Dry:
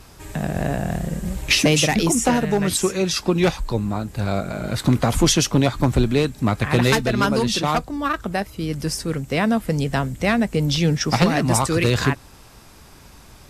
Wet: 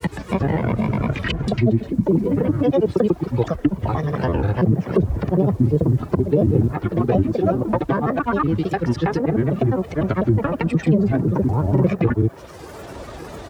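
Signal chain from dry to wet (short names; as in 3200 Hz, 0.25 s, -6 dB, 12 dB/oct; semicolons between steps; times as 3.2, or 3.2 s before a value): slices in reverse order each 0.127 s, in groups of 3; treble ducked by the level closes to 390 Hz, closed at -14 dBFS; HPF 63 Hz 24 dB/oct; bell 190 Hz +11 dB 0.95 oct; comb 2.4 ms, depth 99%; requantised 10-bit, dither triangular; grains, grains 20/s, pitch spread up and down by 7 st; on a send: band-limited delay 0.585 s, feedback 84%, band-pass 970 Hz, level -22 dB; on the sum: maximiser +4.5 dB; three-band squash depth 40%; gain -5 dB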